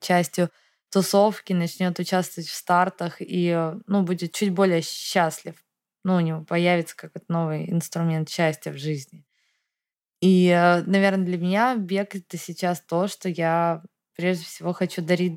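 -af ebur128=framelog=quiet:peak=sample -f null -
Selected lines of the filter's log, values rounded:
Integrated loudness:
  I:         -23.5 LUFS
  Threshold: -33.9 LUFS
Loudness range:
  LRA:         4.5 LU
  Threshold: -44.0 LUFS
  LRA low:   -26.3 LUFS
  LRA high:  -21.8 LUFS
Sample peak:
  Peak:       -6.7 dBFS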